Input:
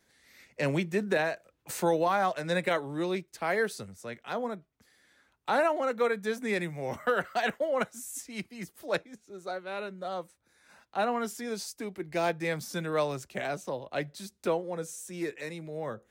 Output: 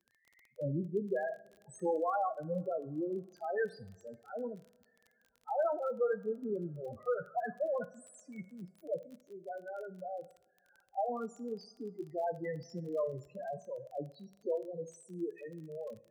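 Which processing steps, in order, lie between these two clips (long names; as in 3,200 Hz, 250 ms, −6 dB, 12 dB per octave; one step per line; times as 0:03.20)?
spectral peaks only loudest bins 4
coupled-rooms reverb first 0.48 s, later 2.8 s, from −22 dB, DRR 11 dB
surface crackle 25 per second −43 dBFS
level −4 dB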